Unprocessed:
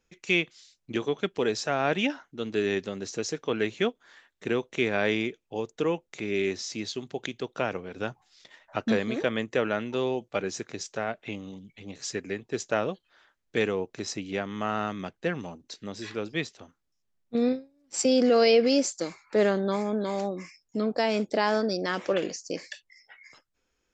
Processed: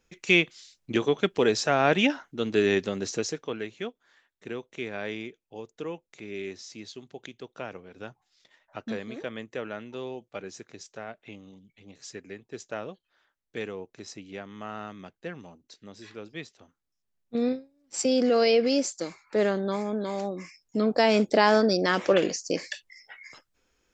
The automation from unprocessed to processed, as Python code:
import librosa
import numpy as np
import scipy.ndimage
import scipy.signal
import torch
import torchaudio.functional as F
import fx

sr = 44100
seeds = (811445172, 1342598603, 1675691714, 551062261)

y = fx.gain(x, sr, db=fx.line((3.12, 4.0), (3.68, -8.5), (16.43, -8.5), (17.39, -1.5), (20.22, -1.5), (21.11, 5.0)))